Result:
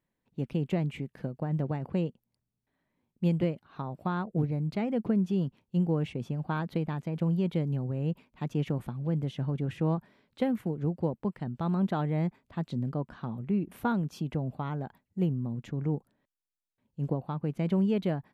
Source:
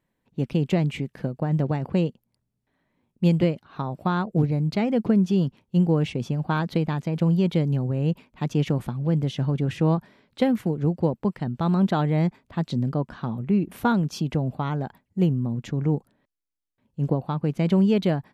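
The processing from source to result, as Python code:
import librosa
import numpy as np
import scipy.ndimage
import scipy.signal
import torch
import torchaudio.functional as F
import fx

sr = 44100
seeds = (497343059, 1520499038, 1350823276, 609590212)

y = fx.dynamic_eq(x, sr, hz=5300.0, q=0.97, threshold_db=-53.0, ratio=4.0, max_db=-7)
y = y * 10.0 ** (-7.0 / 20.0)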